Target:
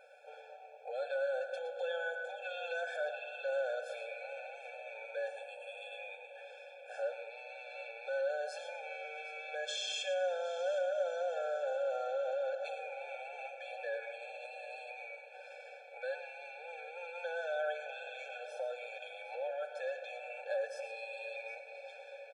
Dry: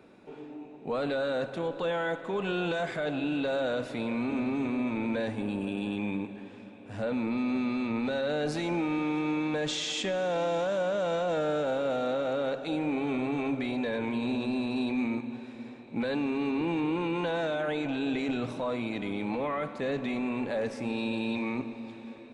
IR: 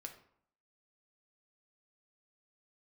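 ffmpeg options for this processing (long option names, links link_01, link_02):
-filter_complex "[0:a]acompressor=threshold=-36dB:ratio=6,aecho=1:1:5.3:0.5,aecho=1:1:760:0.141,asplit=2[link_01][link_02];[1:a]atrim=start_sample=2205,adelay=114[link_03];[link_02][link_03]afir=irnorm=-1:irlink=0,volume=-6.5dB[link_04];[link_01][link_04]amix=inputs=2:normalize=0,afftfilt=real='re*eq(mod(floor(b*sr/1024/450),2),1)':imag='im*eq(mod(floor(b*sr/1024/450),2),1)':win_size=1024:overlap=0.75,volume=1.5dB"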